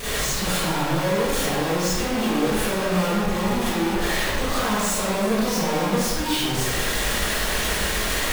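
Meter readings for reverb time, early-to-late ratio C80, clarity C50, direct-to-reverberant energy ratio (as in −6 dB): 1.5 s, −1.0 dB, −5.0 dB, −12.0 dB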